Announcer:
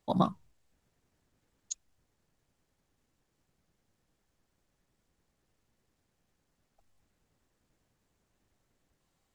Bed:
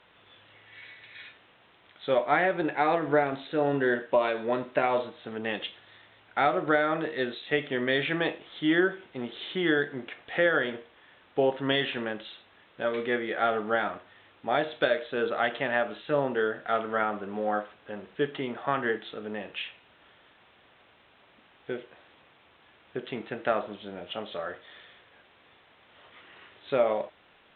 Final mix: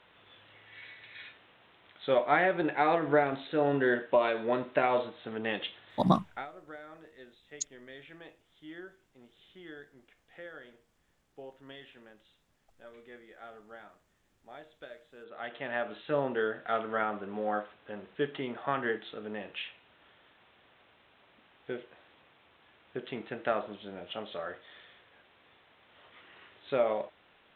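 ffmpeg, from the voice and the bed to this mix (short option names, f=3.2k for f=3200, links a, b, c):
-filter_complex "[0:a]adelay=5900,volume=2.5dB[a];[1:a]volume=17.5dB,afade=t=out:st=6.16:d=0.3:silence=0.0891251,afade=t=in:st=15.25:d=0.79:silence=0.112202[b];[a][b]amix=inputs=2:normalize=0"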